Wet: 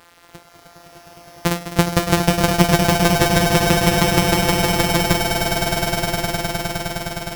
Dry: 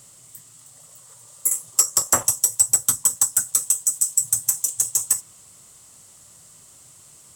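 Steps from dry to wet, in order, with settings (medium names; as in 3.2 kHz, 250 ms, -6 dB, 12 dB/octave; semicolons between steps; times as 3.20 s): sorted samples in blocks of 256 samples; small samples zeroed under -44.5 dBFS; echo with a slow build-up 103 ms, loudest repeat 8, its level -6.5 dB; trim +2 dB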